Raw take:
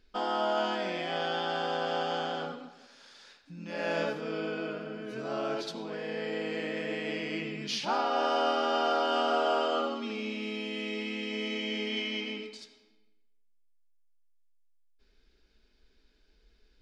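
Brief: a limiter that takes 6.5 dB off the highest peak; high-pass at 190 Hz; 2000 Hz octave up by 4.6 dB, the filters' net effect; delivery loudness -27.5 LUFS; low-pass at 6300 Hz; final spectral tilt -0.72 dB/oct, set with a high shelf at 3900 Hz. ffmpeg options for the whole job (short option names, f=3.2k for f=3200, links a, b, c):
-af "highpass=190,lowpass=6.3k,equalizer=f=2k:t=o:g=7.5,highshelf=f=3.9k:g=-5.5,volume=4.5dB,alimiter=limit=-16.5dB:level=0:latency=1"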